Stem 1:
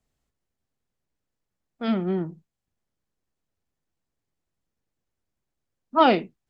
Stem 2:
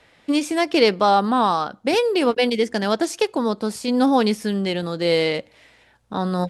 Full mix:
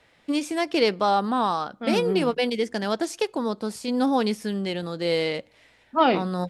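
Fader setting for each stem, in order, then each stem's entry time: −2.0, −5.0 decibels; 0.00, 0.00 seconds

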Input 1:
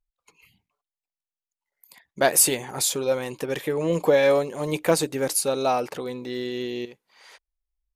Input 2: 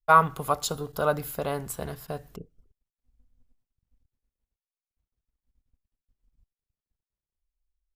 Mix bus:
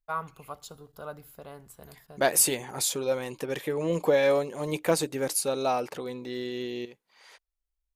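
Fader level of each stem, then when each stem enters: −4.0, −15.0 decibels; 0.00, 0.00 seconds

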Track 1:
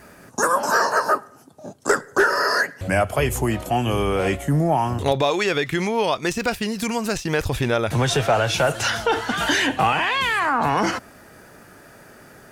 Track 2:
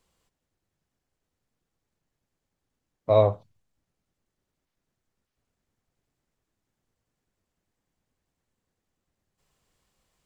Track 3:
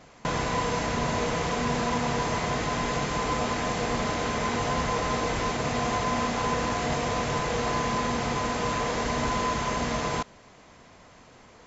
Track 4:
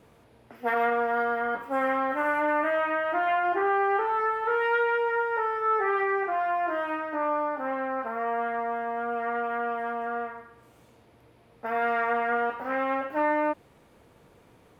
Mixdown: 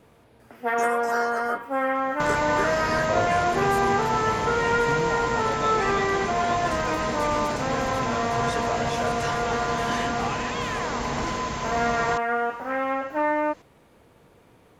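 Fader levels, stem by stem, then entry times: −13.5, −8.5, −1.5, +1.5 decibels; 0.40, 0.00, 1.95, 0.00 seconds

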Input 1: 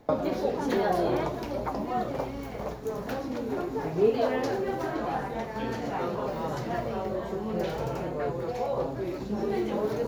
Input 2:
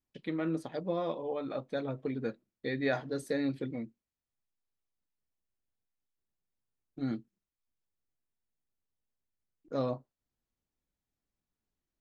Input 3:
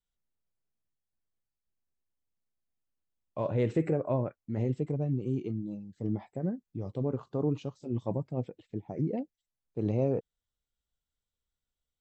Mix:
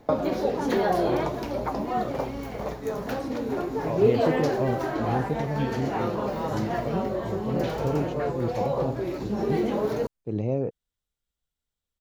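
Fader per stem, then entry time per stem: +2.5, −13.0, +1.5 decibels; 0.00, 0.00, 0.50 seconds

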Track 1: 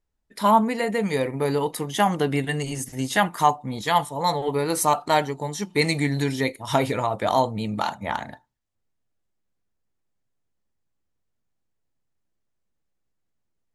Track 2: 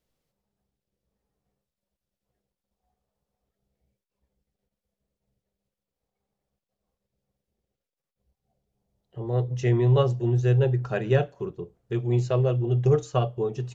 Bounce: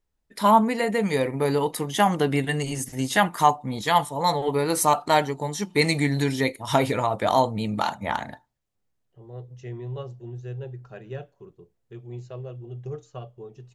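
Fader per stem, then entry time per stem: +0.5, −14.0 decibels; 0.00, 0.00 seconds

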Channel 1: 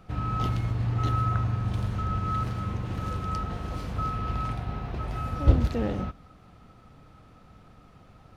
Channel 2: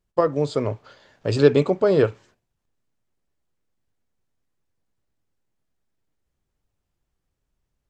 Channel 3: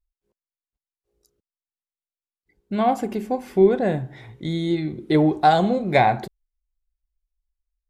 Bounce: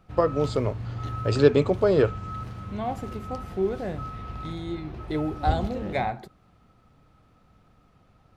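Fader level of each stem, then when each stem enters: −6.5, −2.5, −10.5 decibels; 0.00, 0.00, 0.00 seconds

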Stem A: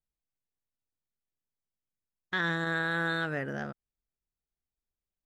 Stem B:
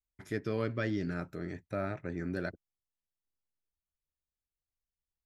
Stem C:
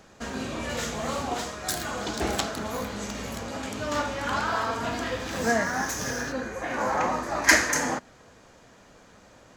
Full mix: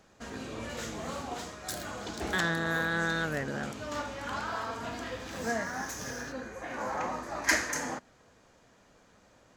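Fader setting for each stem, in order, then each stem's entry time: 0.0, −12.0, −8.0 decibels; 0.00, 0.00, 0.00 seconds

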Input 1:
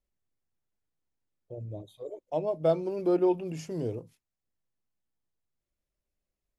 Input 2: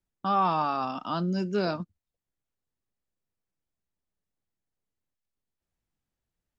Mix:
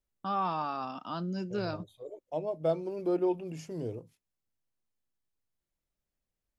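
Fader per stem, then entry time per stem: −4.0, −6.5 decibels; 0.00, 0.00 seconds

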